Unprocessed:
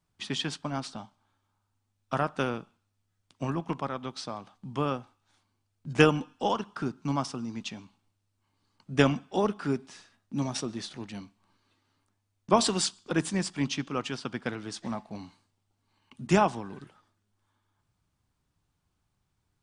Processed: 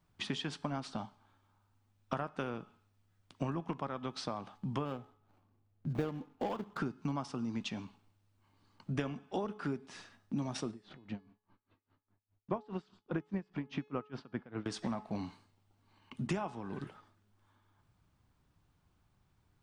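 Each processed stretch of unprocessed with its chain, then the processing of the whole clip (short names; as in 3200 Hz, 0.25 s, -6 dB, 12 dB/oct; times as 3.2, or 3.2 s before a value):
4.85–6.78 median filter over 25 samples + notch 960 Hz, Q 14
10.71–14.66 tape spacing loss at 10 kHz 28 dB + dB-linear tremolo 4.9 Hz, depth 27 dB
whole clip: compressor 8:1, threshold -38 dBFS; bell 8500 Hz -7.5 dB 2.1 oct; de-hum 424.9 Hz, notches 37; gain +5 dB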